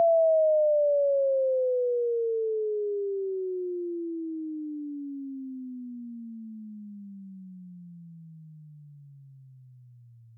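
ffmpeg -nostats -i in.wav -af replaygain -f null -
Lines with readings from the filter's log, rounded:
track_gain = +7.3 dB
track_peak = 0.108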